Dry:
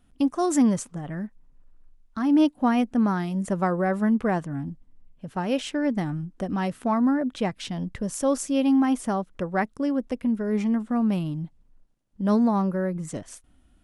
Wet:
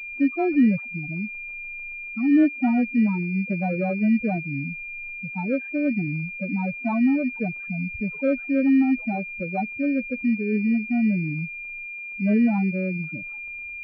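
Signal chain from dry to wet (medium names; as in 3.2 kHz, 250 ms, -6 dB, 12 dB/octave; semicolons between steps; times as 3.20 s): loudest bins only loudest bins 4; crackle 130 per s -47 dBFS; class-D stage that switches slowly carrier 2.4 kHz; trim +2 dB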